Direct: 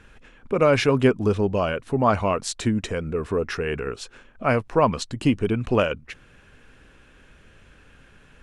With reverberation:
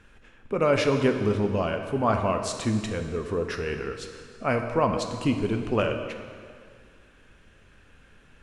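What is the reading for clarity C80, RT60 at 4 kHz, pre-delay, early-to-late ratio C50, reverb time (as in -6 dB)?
8.0 dB, 1.8 s, 4 ms, 6.5 dB, 2.0 s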